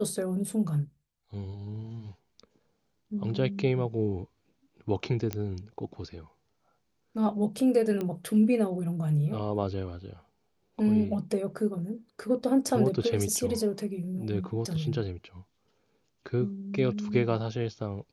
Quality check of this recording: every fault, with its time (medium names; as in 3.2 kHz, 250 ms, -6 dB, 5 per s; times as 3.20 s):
5.33 s: pop -16 dBFS
8.01 s: pop -20 dBFS